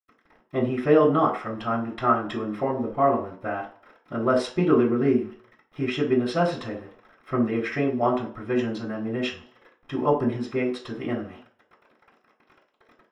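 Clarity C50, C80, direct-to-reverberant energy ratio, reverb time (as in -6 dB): 9.0 dB, 14.0 dB, -13.5 dB, 0.50 s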